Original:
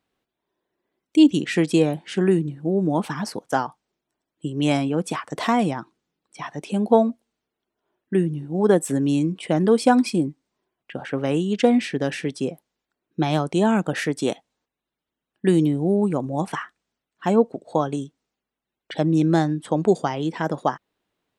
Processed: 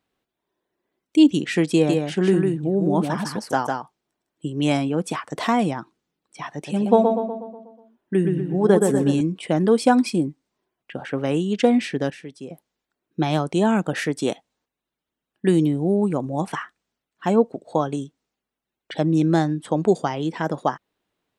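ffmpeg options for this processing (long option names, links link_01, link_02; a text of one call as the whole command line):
ffmpeg -i in.wav -filter_complex "[0:a]asettb=1/sr,asplit=3[link_01][link_02][link_03];[link_01]atrim=end=1.724[link_04];[link_02]atrim=start=1.72:end=4.53,asetpts=PTS-STARTPTS,afade=type=in:duration=0.004:curve=qsin,afade=type=out:start_time=2.806:duration=0.004:curve=qsin,aecho=1:1:154:0.631,atrim=end_sample=123921[link_05];[link_03]atrim=start=4.526[link_06];[link_04][link_05]acrossfade=duration=0.004:curve1=hsin:curve2=qsin[link_07];[link_07][link_06]acrossfade=duration=0.004:curve1=qsin:curve2=hsin,asettb=1/sr,asplit=3[link_08][link_09][link_10];[link_08]atrim=end=6.524[link_11];[link_09]atrim=start=6.52:end=9.21,asetpts=PTS-STARTPTS,afade=type=in:duration=0.004:curve=qsin,afade=type=out:start_time=2.686:duration=0.004:curve=qsin,asplit=2[link_12][link_13];[link_13]adelay=122,lowpass=frequency=2800:poles=1,volume=-4dB,asplit=2[link_14][link_15];[link_15]adelay=122,lowpass=frequency=2800:poles=1,volume=0.54,asplit=2[link_16][link_17];[link_17]adelay=122,lowpass=frequency=2800:poles=1,volume=0.54,asplit=2[link_18][link_19];[link_19]adelay=122,lowpass=frequency=2800:poles=1,volume=0.54,asplit=2[link_20][link_21];[link_21]adelay=122,lowpass=frequency=2800:poles=1,volume=0.54,asplit=2[link_22][link_23];[link_23]adelay=122,lowpass=frequency=2800:poles=1,volume=0.54,asplit=2[link_24][link_25];[link_25]adelay=122,lowpass=frequency=2800:poles=1,volume=0.54[link_26];[link_12][link_14][link_16][link_18][link_20][link_22][link_24][link_26]amix=inputs=8:normalize=0,atrim=end_sample=118629[link_27];[link_10]atrim=start=9.206[link_28];[link_11][link_27]acrossfade=duration=0.004:curve1=hsin:curve2=qsin[link_29];[link_29][link_28]acrossfade=duration=0.004:curve1=qsin:curve2=hsin,asplit=3[link_30][link_31][link_32];[link_30]atrim=end=12.102[link_33];[link_31]atrim=start=12.098:end=12.502,asetpts=PTS-STARTPTS,volume=-11dB[link_34];[link_32]atrim=start=12.498[link_35];[link_33][link_34]acrossfade=duration=0.004:curve1=hsin:curve2=hsin[link_36];[link_36][link_35]acrossfade=duration=0.004:curve1=hsin:curve2=hsin" out.wav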